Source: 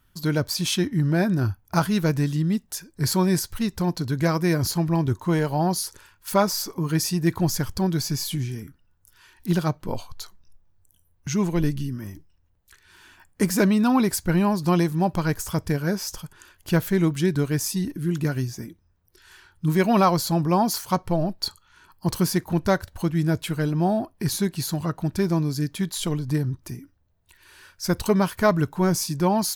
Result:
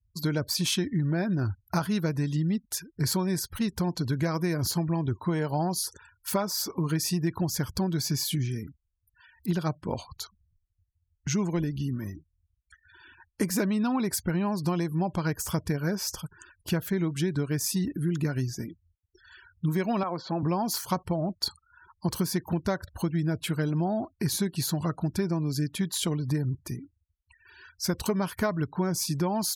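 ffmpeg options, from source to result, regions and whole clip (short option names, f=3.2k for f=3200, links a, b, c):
-filter_complex "[0:a]asettb=1/sr,asplit=3[a][b][c];[a]atrim=end=20.034[d];[b]atrim=start=20.03:end=20.43,asetpts=PTS-STARTPTS,afade=t=in:d=0.004:c=qsin,afade=t=out:st=0.396:d=0.004:c=qsin,acompressor=threshold=-20dB:ratio=2.5:attack=3.2:release=140:knee=1:detection=peak,highpass=230,lowpass=2.4k[e];[c]atrim=start=20.426[f];[d][e]acrossfade=d=0.004:c1=hsin:c2=qsin[g];[g][f]acrossfade=d=0.004:c1=qsin:c2=hsin,acompressor=threshold=-23dB:ratio=10,afftfilt=real='re*gte(hypot(re,im),0.00447)':imag='im*gte(hypot(re,im),0.00447)':win_size=1024:overlap=0.75,highpass=49"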